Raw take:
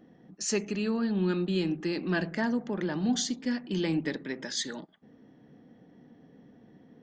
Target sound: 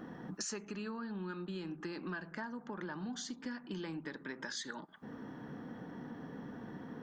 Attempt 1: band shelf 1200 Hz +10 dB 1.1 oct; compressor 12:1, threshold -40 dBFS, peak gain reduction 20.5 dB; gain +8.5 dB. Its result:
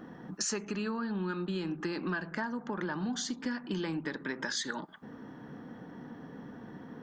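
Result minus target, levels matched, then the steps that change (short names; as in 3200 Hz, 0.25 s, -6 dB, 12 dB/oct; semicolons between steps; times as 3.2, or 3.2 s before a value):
compressor: peak gain reduction -7.5 dB
change: compressor 12:1, threshold -48 dBFS, peak gain reduction 28 dB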